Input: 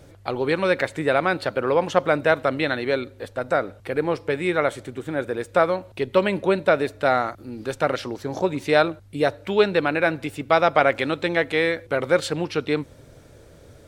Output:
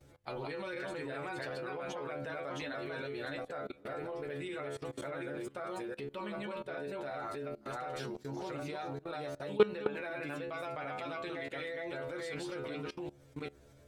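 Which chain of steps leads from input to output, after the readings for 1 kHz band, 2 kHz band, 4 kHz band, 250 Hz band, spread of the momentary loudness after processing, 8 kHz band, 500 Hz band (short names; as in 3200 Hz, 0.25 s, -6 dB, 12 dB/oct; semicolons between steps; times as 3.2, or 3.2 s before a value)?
-18.0 dB, -17.5 dB, -16.0 dB, -15.5 dB, 2 LU, n/a, -16.5 dB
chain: reverse delay 0.374 s, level -1 dB; metallic resonator 69 Hz, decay 0.34 s, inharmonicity 0.002; level quantiser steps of 20 dB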